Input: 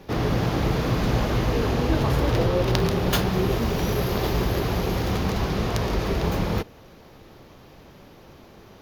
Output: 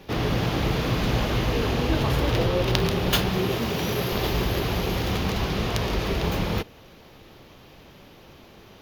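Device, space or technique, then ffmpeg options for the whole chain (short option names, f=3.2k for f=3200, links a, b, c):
presence and air boost: -filter_complex "[0:a]asettb=1/sr,asplit=3[a][b][c];[a]atrim=end=3.374[d];[b]atrim=start=3.37:end=4.13,asetpts=PTS-STARTPTS,afade=t=in:d=0.004:c=qsin,afade=t=out:st=0.756:d=0.004:c=qsin,highpass=95[e];[c]atrim=start=4.126[f];[d][e]acrossfade=d=0.004:c1=hsin:c2=qsin[g];[g][f]acrossfade=d=0.004:c1=qsin:c2=hsin,equalizer=f=3k:t=o:w=1.1:g=6,highshelf=f=11k:g=4.5,volume=-1.5dB"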